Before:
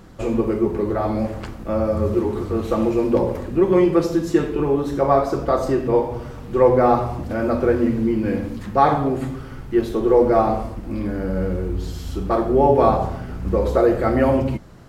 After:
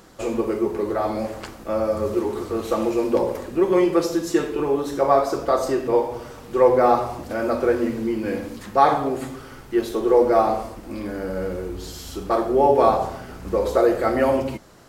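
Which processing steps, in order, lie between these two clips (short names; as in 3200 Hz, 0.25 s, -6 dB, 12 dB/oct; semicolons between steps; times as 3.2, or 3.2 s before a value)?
tone controls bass -11 dB, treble +6 dB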